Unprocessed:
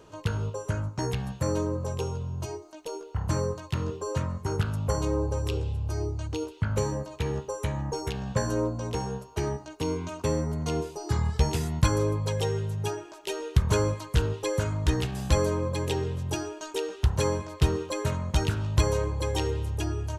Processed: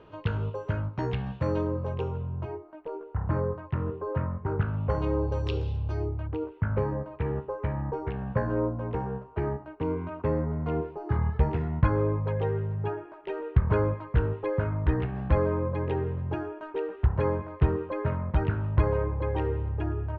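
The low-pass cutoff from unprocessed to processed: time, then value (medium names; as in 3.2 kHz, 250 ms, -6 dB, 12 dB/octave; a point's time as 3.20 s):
low-pass 24 dB/octave
1.66 s 3.2 kHz
2.75 s 1.9 kHz
4.51 s 1.9 kHz
5.69 s 5 kHz
6.29 s 2 kHz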